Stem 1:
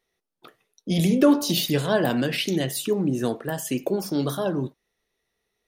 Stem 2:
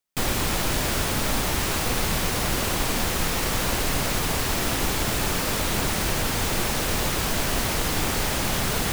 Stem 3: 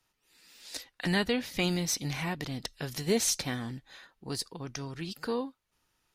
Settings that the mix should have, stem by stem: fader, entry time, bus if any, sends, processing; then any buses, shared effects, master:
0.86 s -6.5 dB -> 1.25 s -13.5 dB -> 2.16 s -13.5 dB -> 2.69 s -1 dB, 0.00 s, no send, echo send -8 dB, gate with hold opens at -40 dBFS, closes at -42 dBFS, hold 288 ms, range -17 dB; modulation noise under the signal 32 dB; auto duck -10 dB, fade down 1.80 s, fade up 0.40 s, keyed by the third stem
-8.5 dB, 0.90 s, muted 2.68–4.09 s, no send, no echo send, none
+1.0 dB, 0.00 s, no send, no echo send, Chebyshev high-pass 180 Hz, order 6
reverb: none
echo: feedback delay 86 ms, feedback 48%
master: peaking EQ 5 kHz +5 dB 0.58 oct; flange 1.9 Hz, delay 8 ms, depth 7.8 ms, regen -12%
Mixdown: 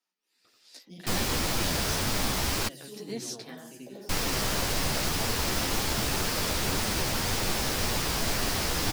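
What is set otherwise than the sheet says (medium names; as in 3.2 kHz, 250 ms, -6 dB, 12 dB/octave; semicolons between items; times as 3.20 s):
stem 1 -6.5 dB -> -15.0 dB; stem 2 -8.5 dB -> -1.0 dB; stem 3 +1.0 dB -> -7.5 dB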